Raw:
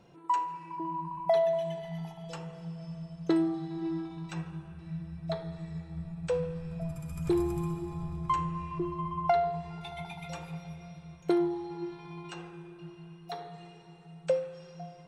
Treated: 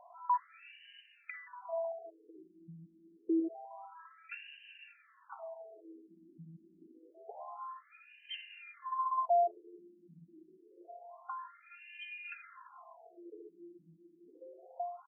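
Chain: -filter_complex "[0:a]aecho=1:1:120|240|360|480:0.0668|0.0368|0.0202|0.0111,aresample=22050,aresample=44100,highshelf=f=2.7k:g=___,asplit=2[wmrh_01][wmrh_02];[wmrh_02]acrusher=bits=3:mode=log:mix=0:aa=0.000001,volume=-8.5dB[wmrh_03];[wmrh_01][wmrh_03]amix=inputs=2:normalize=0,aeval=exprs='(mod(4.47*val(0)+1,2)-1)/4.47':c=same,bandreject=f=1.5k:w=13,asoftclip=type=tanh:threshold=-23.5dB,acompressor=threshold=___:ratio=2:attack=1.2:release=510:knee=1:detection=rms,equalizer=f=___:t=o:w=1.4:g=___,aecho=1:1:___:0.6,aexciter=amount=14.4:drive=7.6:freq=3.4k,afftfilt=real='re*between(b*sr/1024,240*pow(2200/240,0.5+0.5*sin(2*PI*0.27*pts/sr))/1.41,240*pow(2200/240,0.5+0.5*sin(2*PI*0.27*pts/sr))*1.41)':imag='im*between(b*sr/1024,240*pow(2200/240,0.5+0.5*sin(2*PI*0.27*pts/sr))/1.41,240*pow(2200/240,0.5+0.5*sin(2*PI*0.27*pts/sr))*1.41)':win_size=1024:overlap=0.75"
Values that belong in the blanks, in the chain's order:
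11, -38dB, 820, 4, 2.9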